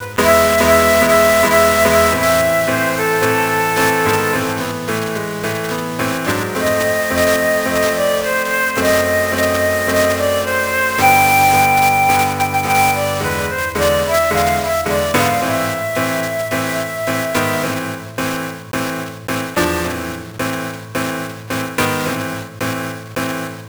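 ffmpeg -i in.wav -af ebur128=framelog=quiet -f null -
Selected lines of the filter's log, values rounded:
Integrated loudness:
  I:         -15.4 LUFS
  Threshold: -25.4 LUFS
Loudness range:
  LRA:         8.1 LU
  Threshold: -35.7 LUFS
  LRA low:   -20.9 LUFS
  LRA high:  -12.8 LUFS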